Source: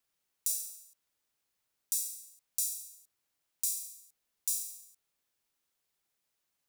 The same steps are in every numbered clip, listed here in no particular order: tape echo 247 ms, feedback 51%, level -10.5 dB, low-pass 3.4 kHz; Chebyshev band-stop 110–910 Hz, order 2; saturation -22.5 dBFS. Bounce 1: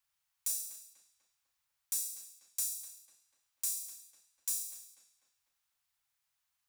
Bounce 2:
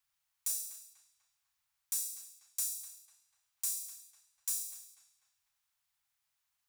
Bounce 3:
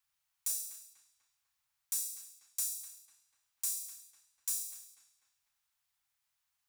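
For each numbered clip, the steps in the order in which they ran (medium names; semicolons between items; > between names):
Chebyshev band-stop > tape echo > saturation; tape echo > saturation > Chebyshev band-stop; saturation > Chebyshev band-stop > tape echo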